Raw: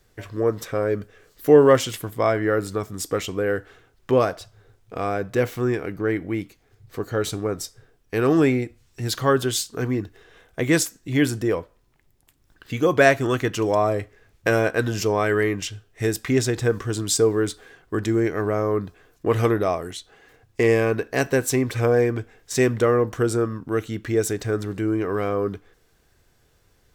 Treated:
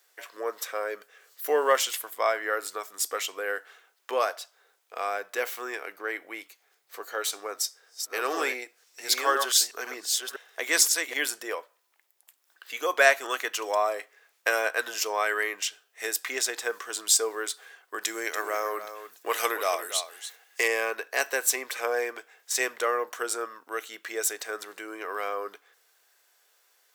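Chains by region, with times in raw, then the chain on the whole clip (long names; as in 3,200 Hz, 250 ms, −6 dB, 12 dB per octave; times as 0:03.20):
0:07.32–0:11.14: delay that plays each chunk backwards 507 ms, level −5 dB + parametric band 5,400 Hz +4.5 dB 0.66 octaves
0:18.01–0:20.68: high-shelf EQ 2,900 Hz +9 dB + single-tap delay 286 ms −11 dB
whole clip: Bessel high-pass filter 830 Hz, order 4; high-shelf EQ 11,000 Hz +8.5 dB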